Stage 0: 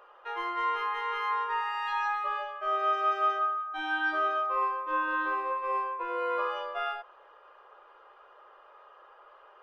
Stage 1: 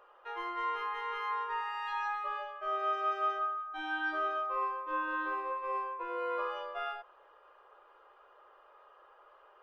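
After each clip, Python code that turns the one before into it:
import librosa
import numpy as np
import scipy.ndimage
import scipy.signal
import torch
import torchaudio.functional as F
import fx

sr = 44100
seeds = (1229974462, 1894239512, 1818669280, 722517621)

y = fx.low_shelf(x, sr, hz=350.0, db=4.5)
y = y * 10.0 ** (-5.5 / 20.0)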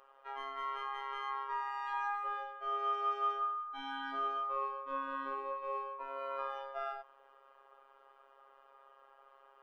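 y = fx.robotise(x, sr, hz=136.0)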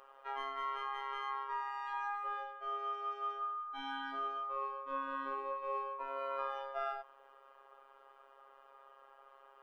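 y = fx.rider(x, sr, range_db=5, speed_s=0.5)
y = y * 10.0 ** (-1.5 / 20.0)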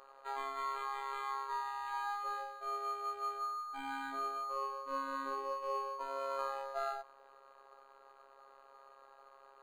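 y = np.interp(np.arange(len(x)), np.arange(len(x))[::8], x[::8])
y = y * 10.0 ** (1.5 / 20.0)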